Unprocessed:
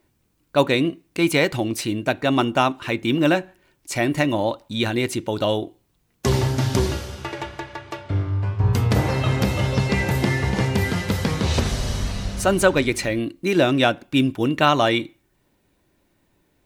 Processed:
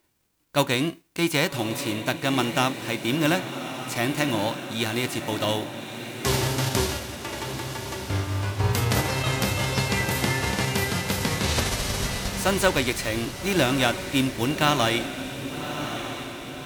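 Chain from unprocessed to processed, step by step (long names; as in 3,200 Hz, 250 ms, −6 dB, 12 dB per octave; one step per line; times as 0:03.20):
spectral envelope flattened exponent 0.6
feedback delay with all-pass diffusion 1,175 ms, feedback 57%, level −9 dB
level −4.5 dB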